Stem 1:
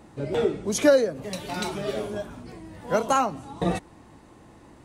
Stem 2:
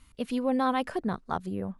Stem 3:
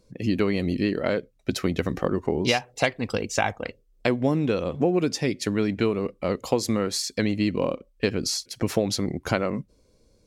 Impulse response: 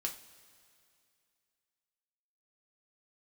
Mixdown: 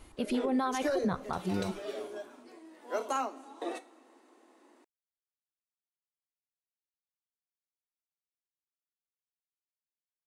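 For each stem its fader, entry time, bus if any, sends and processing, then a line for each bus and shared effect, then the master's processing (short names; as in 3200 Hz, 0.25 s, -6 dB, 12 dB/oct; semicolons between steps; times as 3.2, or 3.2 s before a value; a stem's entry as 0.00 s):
-13.0 dB, 0.00 s, send -5 dB, steep high-pass 240 Hz 96 dB/oct
+1.0 dB, 0.00 s, send -11.5 dB, reverb removal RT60 0.61 s
off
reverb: on, pre-delay 3 ms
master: limiter -22 dBFS, peak gain reduction 9.5 dB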